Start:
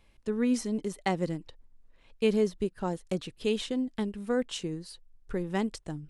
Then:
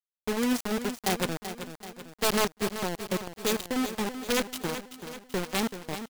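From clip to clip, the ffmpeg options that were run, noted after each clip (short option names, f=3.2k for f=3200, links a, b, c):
-filter_complex "[0:a]aeval=exprs='(mod(8.41*val(0)+1,2)-1)/8.41':c=same,acrusher=bits=4:mix=0:aa=0.000001,asplit=2[a][b];[b]aecho=0:1:383|766|1149|1532|1915|2298:0.299|0.158|0.0839|0.0444|0.0236|0.0125[c];[a][c]amix=inputs=2:normalize=0"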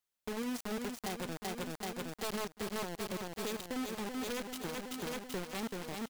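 -af "alimiter=level_in=3dB:limit=-24dB:level=0:latency=1:release=162,volume=-3dB,acompressor=threshold=-41dB:ratio=4,asoftclip=type=tanh:threshold=-38.5dB,volume=7.5dB"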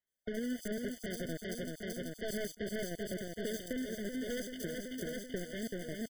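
-filter_complex "[0:a]acrusher=bits=3:mode=log:mix=0:aa=0.000001,acrossover=split=3900[a][b];[b]adelay=70[c];[a][c]amix=inputs=2:normalize=0,afftfilt=real='re*eq(mod(floor(b*sr/1024/730),2),0)':imag='im*eq(mod(floor(b*sr/1024/730),2),0)':win_size=1024:overlap=0.75,volume=1dB"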